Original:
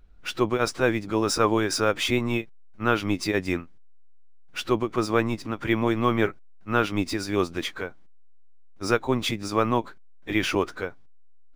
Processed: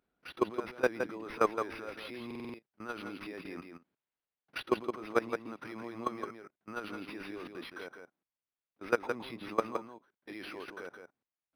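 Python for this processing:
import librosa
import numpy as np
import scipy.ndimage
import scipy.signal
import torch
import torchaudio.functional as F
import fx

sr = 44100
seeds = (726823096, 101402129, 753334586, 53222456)

y = scipy.signal.sosfilt(scipy.signal.butter(2, 230.0, 'highpass', fs=sr, output='sos'), x)
y = fx.level_steps(y, sr, step_db=20)
y = fx.transient(y, sr, attack_db=10, sustain_db=6, at=(3.55, 4.63))
y = y + 10.0 ** (-6.5 / 20.0) * np.pad(y, (int(167 * sr / 1000.0), 0))[:len(y)]
y = fx.buffer_glitch(y, sr, at_s=(2.26,), block=2048, repeats=5)
y = np.interp(np.arange(len(y)), np.arange(len(y))[::6], y[::6])
y = y * librosa.db_to_amplitude(-3.0)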